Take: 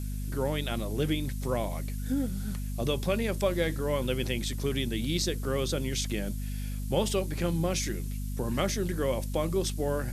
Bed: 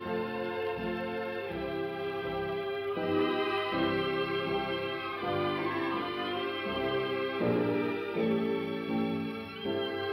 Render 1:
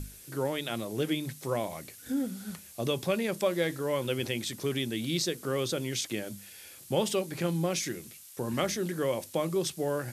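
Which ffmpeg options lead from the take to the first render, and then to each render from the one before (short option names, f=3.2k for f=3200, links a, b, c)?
-af "bandreject=f=50:t=h:w=6,bandreject=f=100:t=h:w=6,bandreject=f=150:t=h:w=6,bandreject=f=200:t=h:w=6,bandreject=f=250:t=h:w=6"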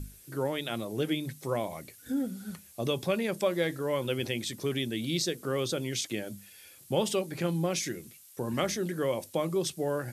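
-af "afftdn=nr=6:nf=-50"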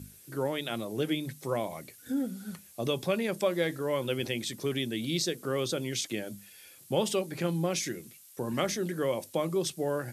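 -af "highpass=100"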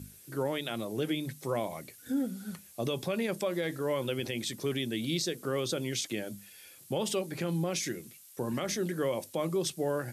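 -af "alimiter=limit=-21.5dB:level=0:latency=1:release=69"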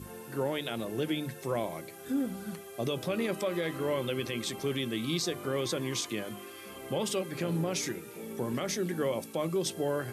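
-filter_complex "[1:a]volume=-13dB[a];[0:a][a]amix=inputs=2:normalize=0"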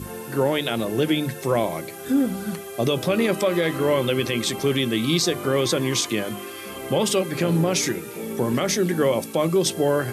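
-af "volume=10.5dB"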